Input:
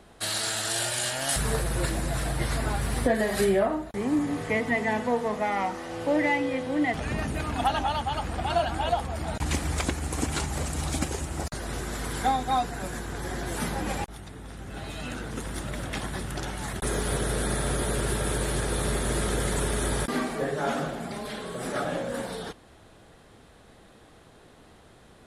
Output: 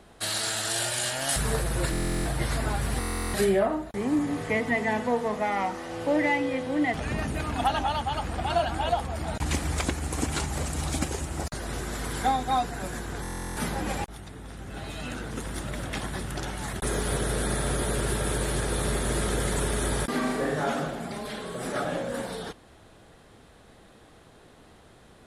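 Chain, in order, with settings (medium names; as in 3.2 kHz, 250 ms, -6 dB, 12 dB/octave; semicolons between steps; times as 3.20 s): 20.19–20.64 s: flutter echo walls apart 6.8 m, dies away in 0.59 s; buffer glitch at 1.91/2.99/13.22 s, samples 1024, times 14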